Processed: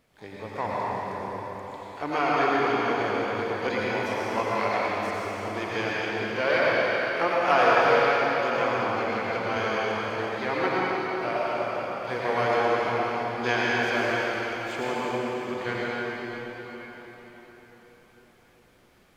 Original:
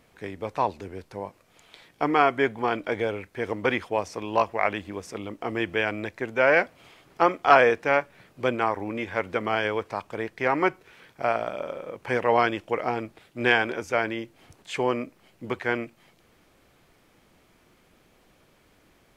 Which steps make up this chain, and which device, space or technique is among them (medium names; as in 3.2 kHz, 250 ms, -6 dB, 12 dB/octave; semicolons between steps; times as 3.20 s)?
shimmer-style reverb (harmony voices +12 st -12 dB; reverberation RT60 4.8 s, pre-delay 79 ms, DRR -7 dB); trim -7.5 dB